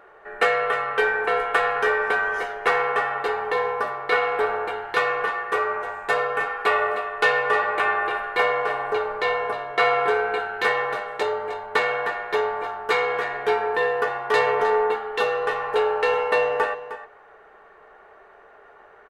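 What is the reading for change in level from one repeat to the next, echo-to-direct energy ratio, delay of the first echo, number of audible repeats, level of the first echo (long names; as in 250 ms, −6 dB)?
repeats not evenly spaced, −12.5 dB, 309 ms, 1, −12.5 dB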